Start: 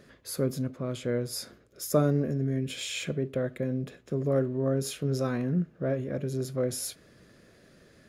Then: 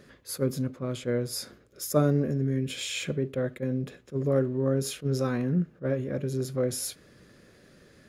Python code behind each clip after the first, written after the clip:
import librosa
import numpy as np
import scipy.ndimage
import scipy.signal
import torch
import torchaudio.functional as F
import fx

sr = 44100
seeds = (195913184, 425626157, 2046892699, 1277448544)

y = fx.notch(x, sr, hz=660.0, q=12.0)
y = fx.attack_slew(y, sr, db_per_s=420.0)
y = F.gain(torch.from_numpy(y), 1.5).numpy()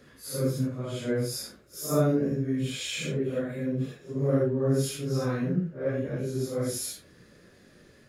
y = fx.phase_scramble(x, sr, seeds[0], window_ms=200)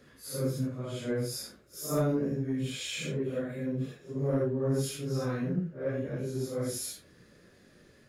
y = 10.0 ** (-15.5 / 20.0) * np.tanh(x / 10.0 ** (-15.5 / 20.0))
y = F.gain(torch.from_numpy(y), -3.0).numpy()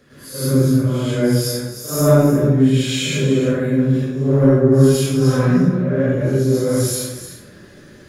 y = x + 10.0 ** (-12.0 / 20.0) * np.pad(x, (int(304 * sr / 1000.0), 0))[:len(x)]
y = fx.rev_plate(y, sr, seeds[1], rt60_s=0.67, hf_ratio=0.65, predelay_ms=90, drr_db=-9.5)
y = F.gain(torch.from_numpy(y), 4.5).numpy()